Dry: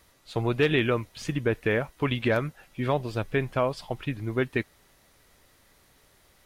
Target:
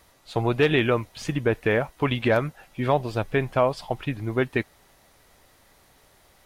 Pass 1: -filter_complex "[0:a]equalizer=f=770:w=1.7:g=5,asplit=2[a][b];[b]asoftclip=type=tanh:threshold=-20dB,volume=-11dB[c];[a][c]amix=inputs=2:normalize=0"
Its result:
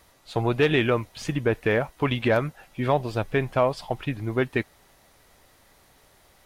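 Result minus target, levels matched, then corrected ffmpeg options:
soft clip: distortion +13 dB
-filter_complex "[0:a]equalizer=f=770:w=1.7:g=5,asplit=2[a][b];[b]asoftclip=type=tanh:threshold=-11dB,volume=-11dB[c];[a][c]amix=inputs=2:normalize=0"

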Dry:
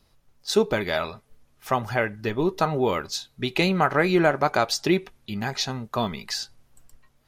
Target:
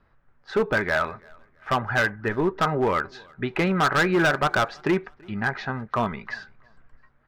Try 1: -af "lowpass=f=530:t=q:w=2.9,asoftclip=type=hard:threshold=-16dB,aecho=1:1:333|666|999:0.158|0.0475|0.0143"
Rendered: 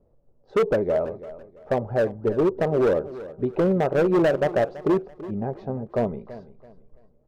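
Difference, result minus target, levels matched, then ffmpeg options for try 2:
2000 Hz band -12.0 dB; echo-to-direct +11.5 dB
-af "lowpass=f=1.6k:t=q:w=2.9,asoftclip=type=hard:threshold=-16dB,aecho=1:1:333|666:0.0422|0.0127"

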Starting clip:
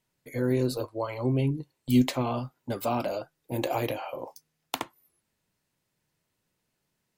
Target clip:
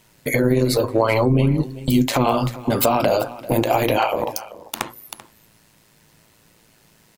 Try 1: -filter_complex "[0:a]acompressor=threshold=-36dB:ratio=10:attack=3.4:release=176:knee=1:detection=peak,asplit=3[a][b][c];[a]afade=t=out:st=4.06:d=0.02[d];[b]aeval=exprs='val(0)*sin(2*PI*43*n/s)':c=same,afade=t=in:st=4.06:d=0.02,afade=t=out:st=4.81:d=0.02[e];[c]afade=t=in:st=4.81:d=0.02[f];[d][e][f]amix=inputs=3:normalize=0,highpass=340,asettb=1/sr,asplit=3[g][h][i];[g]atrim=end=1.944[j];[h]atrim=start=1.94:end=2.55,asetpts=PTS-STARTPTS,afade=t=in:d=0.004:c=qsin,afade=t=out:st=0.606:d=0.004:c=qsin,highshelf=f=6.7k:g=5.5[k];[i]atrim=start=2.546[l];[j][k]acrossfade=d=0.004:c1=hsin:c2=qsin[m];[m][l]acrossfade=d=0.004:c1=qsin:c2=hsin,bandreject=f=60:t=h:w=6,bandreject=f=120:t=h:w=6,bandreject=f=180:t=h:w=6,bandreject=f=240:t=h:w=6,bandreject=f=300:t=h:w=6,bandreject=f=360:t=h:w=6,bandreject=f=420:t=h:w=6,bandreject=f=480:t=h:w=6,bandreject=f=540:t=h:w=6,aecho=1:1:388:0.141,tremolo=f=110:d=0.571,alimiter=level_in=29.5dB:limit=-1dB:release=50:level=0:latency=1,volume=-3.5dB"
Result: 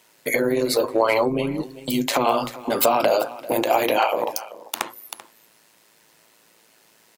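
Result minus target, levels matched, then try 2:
250 Hz band -3.5 dB
-filter_complex "[0:a]acompressor=threshold=-36dB:ratio=10:attack=3.4:release=176:knee=1:detection=peak,asettb=1/sr,asplit=3[a][b][c];[a]atrim=end=1.944[d];[b]atrim=start=1.94:end=2.55,asetpts=PTS-STARTPTS,afade=t=in:d=0.004:c=qsin,afade=t=out:st=0.606:d=0.004:c=qsin,highshelf=f=6.7k:g=5.5[e];[c]atrim=start=2.546[f];[d][e]acrossfade=d=0.004:c1=hsin:c2=qsin[g];[g][f]acrossfade=d=0.004:c1=qsin:c2=hsin,asplit=3[h][i][j];[h]afade=t=out:st=4.06:d=0.02[k];[i]aeval=exprs='val(0)*sin(2*PI*43*n/s)':c=same,afade=t=in:st=4.06:d=0.02,afade=t=out:st=4.81:d=0.02[l];[j]afade=t=in:st=4.81:d=0.02[m];[k][l][m]amix=inputs=3:normalize=0,bandreject=f=60:t=h:w=6,bandreject=f=120:t=h:w=6,bandreject=f=180:t=h:w=6,bandreject=f=240:t=h:w=6,bandreject=f=300:t=h:w=6,bandreject=f=360:t=h:w=6,bandreject=f=420:t=h:w=6,bandreject=f=480:t=h:w=6,bandreject=f=540:t=h:w=6,aecho=1:1:388:0.141,tremolo=f=110:d=0.571,alimiter=level_in=29.5dB:limit=-1dB:release=50:level=0:latency=1,volume=-3.5dB"

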